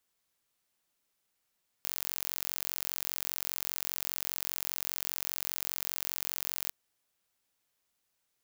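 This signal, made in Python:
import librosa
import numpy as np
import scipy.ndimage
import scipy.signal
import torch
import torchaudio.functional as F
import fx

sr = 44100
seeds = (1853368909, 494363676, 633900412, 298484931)

y = 10.0 ** (-7.0 / 20.0) * (np.mod(np.arange(round(4.86 * sr)), round(sr / 45.0)) == 0)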